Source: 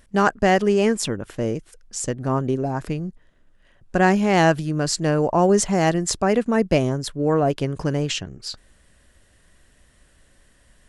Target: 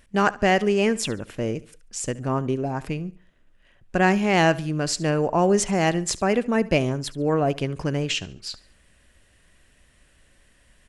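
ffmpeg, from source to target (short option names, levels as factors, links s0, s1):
-filter_complex "[0:a]equalizer=f=2500:t=o:w=0.66:g=6,asplit=2[s0][s1];[s1]aecho=0:1:71|142|213:0.106|0.036|0.0122[s2];[s0][s2]amix=inputs=2:normalize=0,volume=0.75"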